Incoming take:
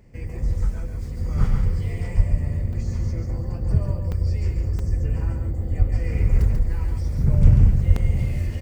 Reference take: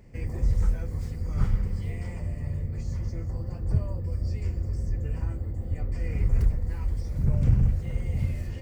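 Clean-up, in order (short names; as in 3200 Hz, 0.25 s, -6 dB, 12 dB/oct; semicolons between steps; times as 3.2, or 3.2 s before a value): de-plosive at 2.16/5.78/7.42/7.87; interpolate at 2.73/4.12/4.79/7.96, 3.6 ms; inverse comb 0.14 s -5 dB; gain 0 dB, from 1.17 s -4.5 dB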